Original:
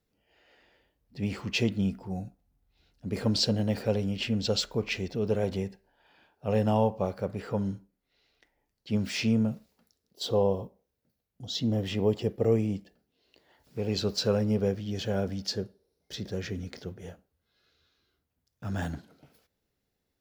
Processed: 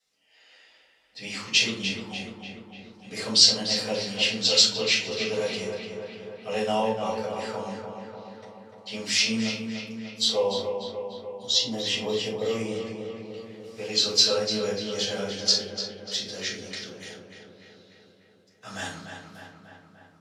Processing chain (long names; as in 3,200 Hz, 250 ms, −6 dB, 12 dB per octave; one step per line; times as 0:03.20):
meter weighting curve ITU-R 468
on a send: feedback echo with a low-pass in the loop 296 ms, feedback 67%, low-pass 3,200 Hz, level −6 dB
on the sum: rectangular room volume 220 cubic metres, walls furnished, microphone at 6.2 metres
level −8 dB